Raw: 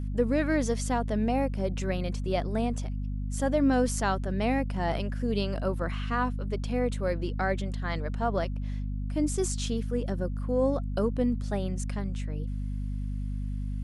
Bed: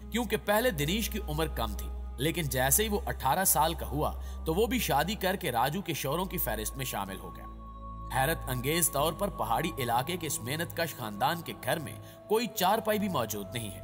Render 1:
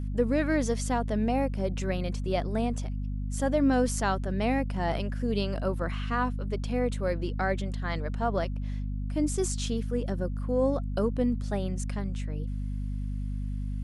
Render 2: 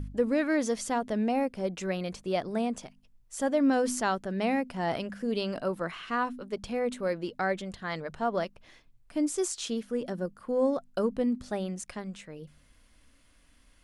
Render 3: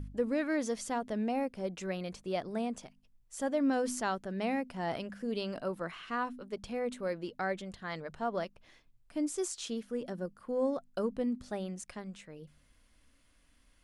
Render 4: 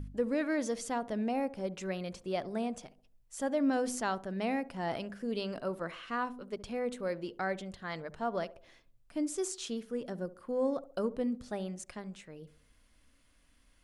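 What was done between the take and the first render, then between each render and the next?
nothing audible
de-hum 50 Hz, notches 5
gain -5 dB
narrowing echo 69 ms, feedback 44%, band-pass 480 Hz, level -15.5 dB

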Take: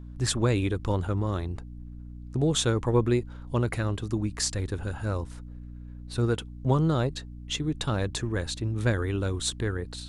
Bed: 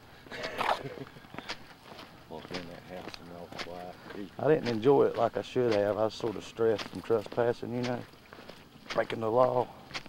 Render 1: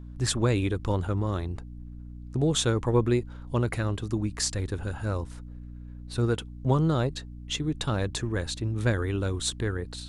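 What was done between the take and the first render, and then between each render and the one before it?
nothing audible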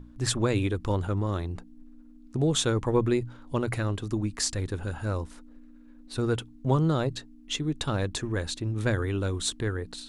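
notches 60/120/180 Hz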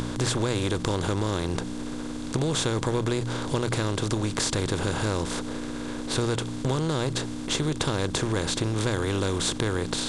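per-bin compression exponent 0.4; compressor, threshold -22 dBFS, peak gain reduction 7 dB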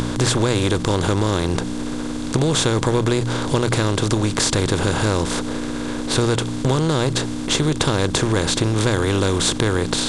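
gain +7.5 dB; limiter -2 dBFS, peak gain reduction 3 dB

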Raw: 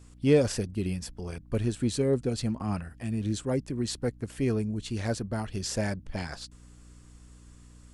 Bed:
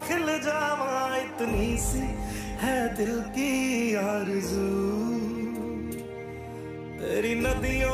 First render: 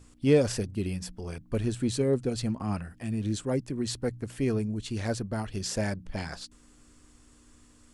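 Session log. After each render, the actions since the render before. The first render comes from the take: de-hum 60 Hz, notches 3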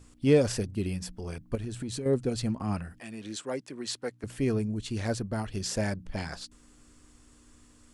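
1.55–2.06 compressor 12:1, threshold -31 dBFS; 3–4.24 weighting filter A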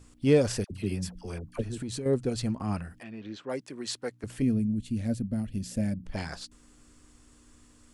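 0.64–1.78 dispersion lows, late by 67 ms, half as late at 850 Hz; 3.03–3.5 air absorption 240 m; 4.42–6.04 EQ curve 120 Hz 0 dB, 250 Hz +6 dB, 390 Hz -12 dB, 560 Hz -5 dB, 960 Hz -19 dB, 2400 Hz -8 dB, 5600 Hz -12 dB, 12000 Hz -1 dB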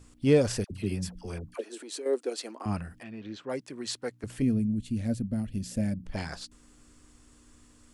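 1.54–2.66 steep high-pass 320 Hz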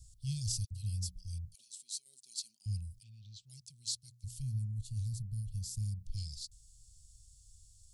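inverse Chebyshev band-stop 270–1900 Hz, stop band 50 dB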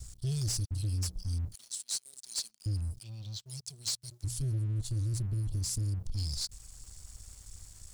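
compressor 4:1, threshold -38 dBFS, peak gain reduction 6 dB; sample leveller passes 3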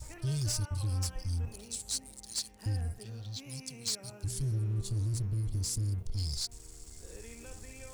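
add bed -24.5 dB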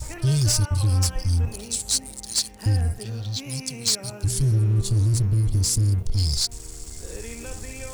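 gain +12 dB

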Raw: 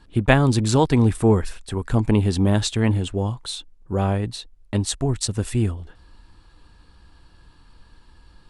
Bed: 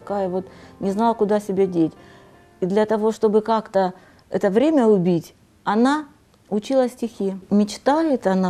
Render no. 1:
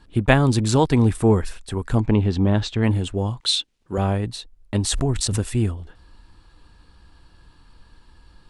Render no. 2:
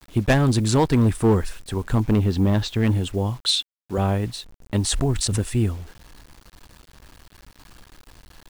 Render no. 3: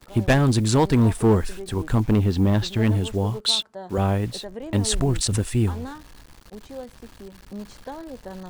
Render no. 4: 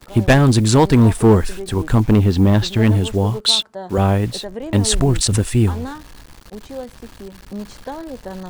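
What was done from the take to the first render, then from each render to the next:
2–2.83 air absorption 140 m; 3.4–3.98 weighting filter D; 4.75–5.41 backwards sustainer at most 25 dB/s
hard clip -11.5 dBFS, distortion -16 dB; bit-crush 8-bit
add bed -18.5 dB
gain +6 dB

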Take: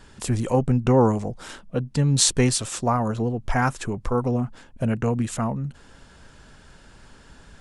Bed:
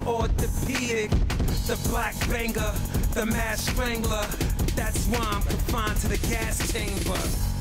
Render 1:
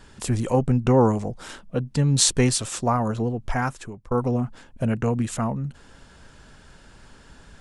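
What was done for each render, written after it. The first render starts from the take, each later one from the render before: 3.04–4.11 fade out equal-power, to -21.5 dB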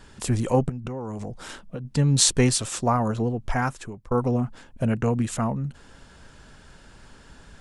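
0.69–1.85 compressor 16:1, threshold -28 dBFS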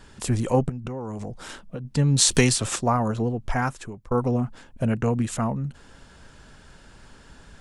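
2.31–2.76 three-band squash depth 100%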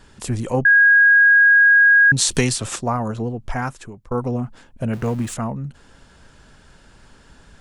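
0.65–2.12 bleep 1640 Hz -8.5 dBFS; 4.93–5.34 zero-crossing step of -34.5 dBFS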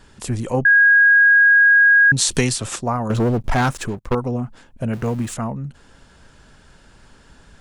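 3.1–4.15 sample leveller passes 3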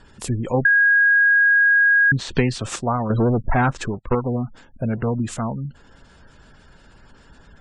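treble ducked by the level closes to 1600 Hz, closed at -11.5 dBFS; spectral gate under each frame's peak -30 dB strong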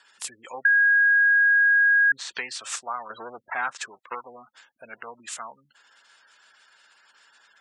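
HPF 1400 Hz 12 dB/oct; dynamic EQ 3100 Hz, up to -6 dB, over -37 dBFS, Q 1.3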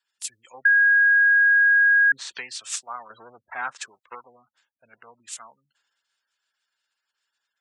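three-band expander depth 70%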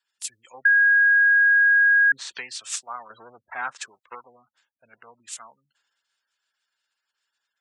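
nothing audible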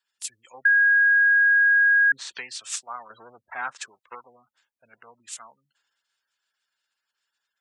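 gain -1 dB

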